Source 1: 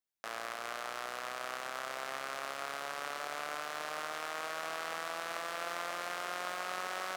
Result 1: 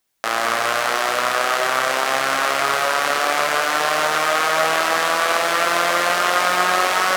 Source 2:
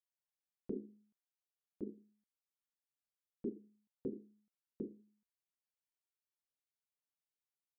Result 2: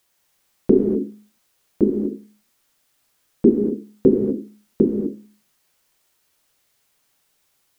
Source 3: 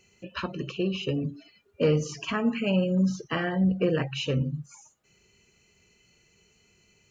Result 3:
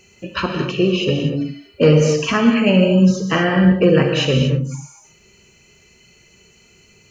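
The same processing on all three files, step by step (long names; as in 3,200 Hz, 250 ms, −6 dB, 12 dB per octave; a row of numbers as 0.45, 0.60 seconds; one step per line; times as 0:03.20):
reverb whose tail is shaped and stops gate 270 ms flat, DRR 3 dB
normalise the peak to −1.5 dBFS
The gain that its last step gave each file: +19.0, +26.5, +10.5 decibels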